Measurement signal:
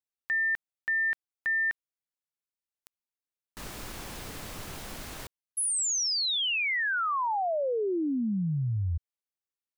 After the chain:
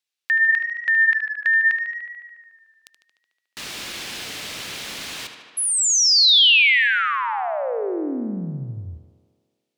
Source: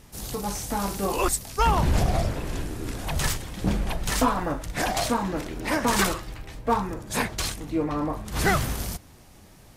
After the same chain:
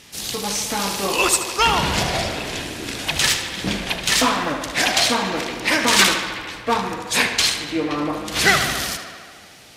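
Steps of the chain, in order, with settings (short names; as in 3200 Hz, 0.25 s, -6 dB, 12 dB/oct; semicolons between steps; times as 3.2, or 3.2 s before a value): weighting filter D; tape echo 74 ms, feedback 80%, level -8 dB, low-pass 5000 Hz; gain +3 dB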